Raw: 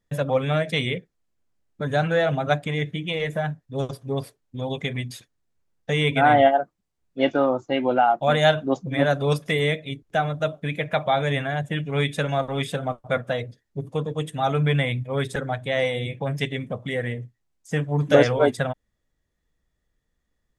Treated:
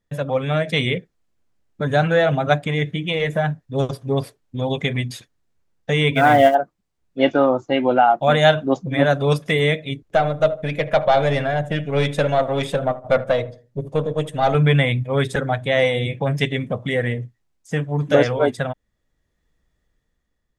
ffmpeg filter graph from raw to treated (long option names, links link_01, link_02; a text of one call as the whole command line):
ffmpeg -i in.wav -filter_complex "[0:a]asettb=1/sr,asplit=3[link_01][link_02][link_03];[link_01]atrim=end=6.154[link_04];[link_02]atrim=start=6.15:end=6.55,asetpts=PTS-STARTPTS,afade=type=in:duration=0.004:curve=qsin,afade=type=out:start_time=0.396:duration=0.004:curve=qsin,acrusher=bits=7:mode=log:mix=0:aa=0.000001,bandreject=frequency=820:width=7.7[link_05];[link_03]atrim=start=6.546[link_06];[link_04][link_05]acrossfade=duration=0.004:curve1=hsin:curve2=qsin[link_07];[link_07][link_06]acrossfade=duration=0.004:curve1=qsin:curve2=hsin,asettb=1/sr,asplit=3[link_08][link_09][link_10];[link_08]atrim=end=10.084[link_11];[link_09]atrim=start=10.08:end=14.55,asetpts=PTS-STARTPTS,afade=type=in:duration=0.004:curve=qsin,afade=type=out:start_time=4.466:duration=0.004:curve=qsin,aeval=exprs='(tanh(5.62*val(0)+0.55)-tanh(0.55))/5.62':channel_layout=same,equalizer=frequency=580:width_type=o:width=0.55:gain=7.5,asplit=2[link_12][link_13];[link_13]adelay=76,lowpass=frequency=1200:poles=1,volume=-15dB,asplit=2[link_14][link_15];[link_15]adelay=76,lowpass=frequency=1200:poles=1,volume=0.38,asplit=2[link_16][link_17];[link_17]adelay=76,lowpass=frequency=1200:poles=1,volume=0.38[link_18];[link_12][link_14][link_16][link_18]amix=inputs=4:normalize=0,atrim=end_sample=197127[link_19];[link_10]atrim=start=14.546[link_20];[link_11][link_19]acrossfade=duration=0.004:curve1=hsin:curve2=qsin[link_21];[link_21][link_20]acrossfade=duration=0.004:curve1=qsin:curve2=hsin,dynaudnorm=framelen=120:gausssize=11:maxgain=6dB,highshelf=frequency=8300:gain=-5.5" out.wav